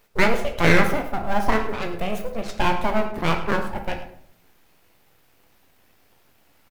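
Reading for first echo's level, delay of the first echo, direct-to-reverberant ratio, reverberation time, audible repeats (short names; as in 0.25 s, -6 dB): -15.0 dB, 0.106 s, 4.0 dB, 0.65 s, 1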